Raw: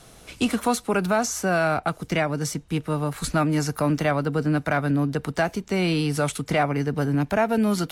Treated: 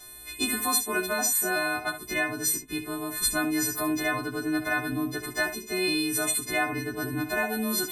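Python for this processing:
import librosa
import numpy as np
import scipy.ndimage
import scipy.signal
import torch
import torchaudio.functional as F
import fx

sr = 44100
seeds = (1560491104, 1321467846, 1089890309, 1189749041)

p1 = fx.freq_snap(x, sr, grid_st=3)
p2 = p1 + 0.75 * np.pad(p1, (int(2.9 * sr / 1000.0), 0))[:len(p1)]
p3 = p2 + fx.room_early_taps(p2, sr, ms=(17, 68), db=(-7.0, -10.5), dry=0)
y = p3 * 10.0 ** (-8.0 / 20.0)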